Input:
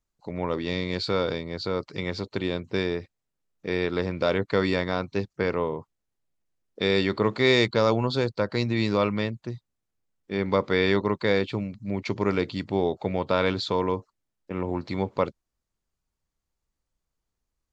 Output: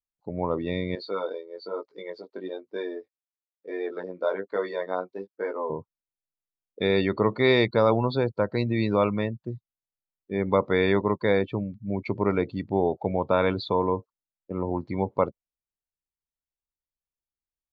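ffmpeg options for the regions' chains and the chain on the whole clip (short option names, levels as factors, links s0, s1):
-filter_complex "[0:a]asettb=1/sr,asplit=3[s0][s1][s2];[s0]atrim=end=0.954[s3];[s1]atrim=start=0.95:end=5.7,asetpts=PTS-STARTPTS,afade=t=in:d=0.004:c=qsin,afade=t=out:st=4.746:d=0.004:c=qsin,highpass=370,equalizer=f=2500:w=2.6:g=-4.5,flanger=delay=19:depth=2.9:speed=1.1[s4];[s2]atrim=start=5.696[s5];[s3][s4]acrossfade=d=0.004:c1=hsin:c2=qsin[s6];[s6][s5]acrossfade=d=0.004:c1=qsin:c2=hsin,highshelf=f=3600:g=-6.5,afftdn=nr=19:nf=-35,equalizer=f=780:t=o:w=0.99:g=3.5"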